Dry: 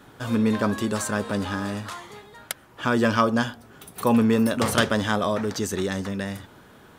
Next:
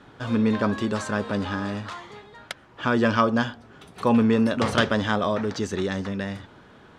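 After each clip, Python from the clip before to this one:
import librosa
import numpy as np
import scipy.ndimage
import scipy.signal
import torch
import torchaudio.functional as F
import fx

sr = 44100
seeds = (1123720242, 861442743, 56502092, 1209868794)

y = scipy.signal.sosfilt(scipy.signal.butter(2, 4900.0, 'lowpass', fs=sr, output='sos'), x)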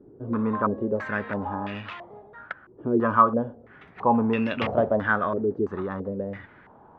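y = fx.filter_held_lowpass(x, sr, hz=3.0, low_hz=390.0, high_hz=2600.0)
y = y * librosa.db_to_amplitude(-5.0)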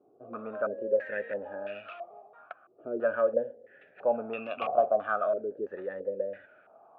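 y = fx.vowel_sweep(x, sr, vowels='a-e', hz=0.42)
y = y * librosa.db_to_amplitude(5.0)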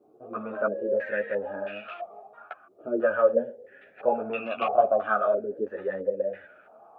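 y = fx.ensemble(x, sr)
y = y * librosa.db_to_amplitude(8.0)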